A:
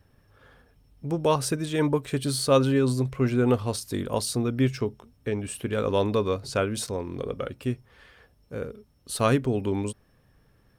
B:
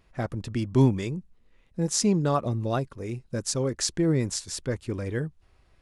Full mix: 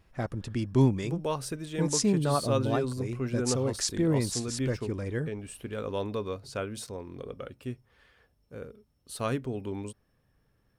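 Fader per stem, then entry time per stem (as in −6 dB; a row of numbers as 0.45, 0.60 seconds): −8.5, −2.5 decibels; 0.00, 0.00 seconds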